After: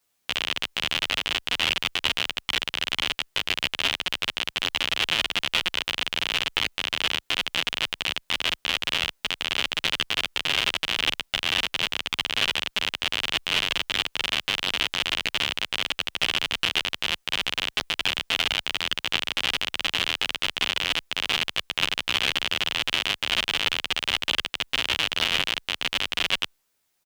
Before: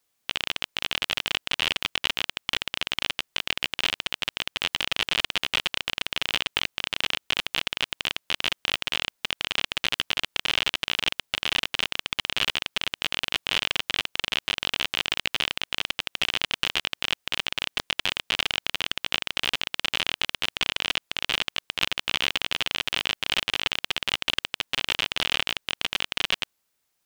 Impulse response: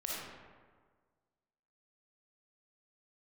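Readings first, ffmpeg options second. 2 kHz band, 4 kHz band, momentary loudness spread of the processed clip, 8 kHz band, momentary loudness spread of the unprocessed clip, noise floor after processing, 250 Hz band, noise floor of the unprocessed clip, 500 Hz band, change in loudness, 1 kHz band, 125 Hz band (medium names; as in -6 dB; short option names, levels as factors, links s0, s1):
+2.0 dB, +2.0 dB, 3 LU, +2.0 dB, 3 LU, -70 dBFS, +2.0 dB, -75 dBFS, +2.0 dB, +2.0 dB, +2.0 dB, +2.0 dB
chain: -filter_complex "[0:a]asplit=2[s0][s1];[s1]adelay=11.1,afreqshift=-1.1[s2];[s0][s2]amix=inputs=2:normalize=1,volume=1.78"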